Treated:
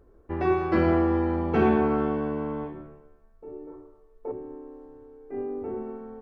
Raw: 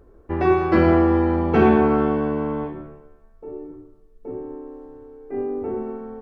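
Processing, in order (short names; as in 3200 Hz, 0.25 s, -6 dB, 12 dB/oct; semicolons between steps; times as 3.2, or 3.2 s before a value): 3.67–4.32 graphic EQ 125/250/500/1000/2000 Hz -4/-4/+8/+11/+4 dB; gain -6 dB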